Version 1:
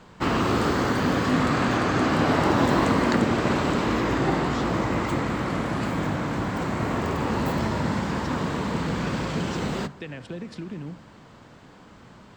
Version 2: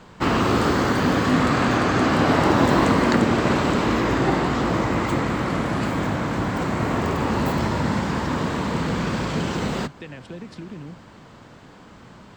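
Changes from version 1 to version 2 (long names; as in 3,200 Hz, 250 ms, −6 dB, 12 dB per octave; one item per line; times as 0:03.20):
background +4.0 dB
reverb: off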